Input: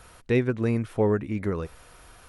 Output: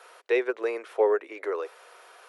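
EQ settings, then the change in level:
Butterworth high-pass 390 Hz 48 dB per octave
low-pass filter 3,600 Hz 6 dB per octave
+3.0 dB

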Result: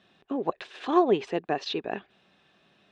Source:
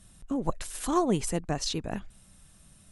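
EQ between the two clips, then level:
loudspeaker in its box 350–4,500 Hz, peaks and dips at 400 Hz +9 dB, 750 Hz +6 dB, 1,100 Hz +3 dB, 1,700 Hz +8 dB, 2,600 Hz +9 dB, 3,600 Hz +7 dB
tilt shelving filter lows +4.5 dB, about 720 Hz
0.0 dB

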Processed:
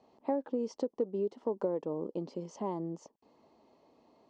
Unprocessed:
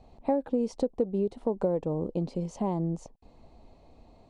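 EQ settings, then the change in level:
loudspeaker in its box 340–6,100 Hz, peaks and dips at 520 Hz −4 dB, 730 Hz −8 dB, 1,500 Hz −4 dB, 2,400 Hz −8 dB, 3,900 Hz −9 dB
0.0 dB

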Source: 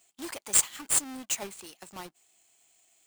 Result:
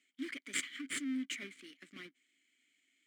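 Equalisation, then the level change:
formant filter i
flat-topped bell 1,500 Hz +9 dB 1.1 octaves
high-shelf EQ 8,000 Hz +5.5 dB
+6.5 dB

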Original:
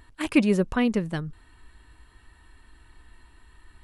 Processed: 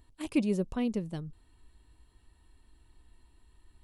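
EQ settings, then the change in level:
parametric band 1,600 Hz −11.5 dB 1.3 octaves
−7.0 dB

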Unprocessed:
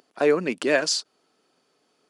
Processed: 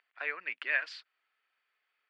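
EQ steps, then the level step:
resonant band-pass 2,000 Hz, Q 2.4
high-frequency loss of the air 440 metres
spectral tilt +5 dB per octave
−1.5 dB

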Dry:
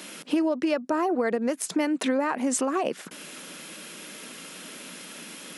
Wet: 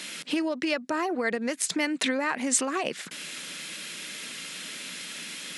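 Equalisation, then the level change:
octave-band graphic EQ 125/2,000/4,000/8,000 Hz +7/+9/+9/+8 dB
−5.0 dB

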